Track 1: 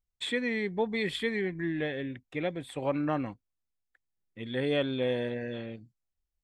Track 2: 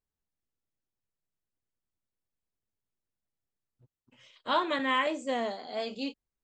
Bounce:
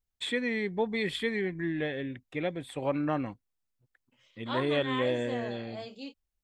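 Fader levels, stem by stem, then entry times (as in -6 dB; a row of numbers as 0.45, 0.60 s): 0.0, -7.5 dB; 0.00, 0.00 s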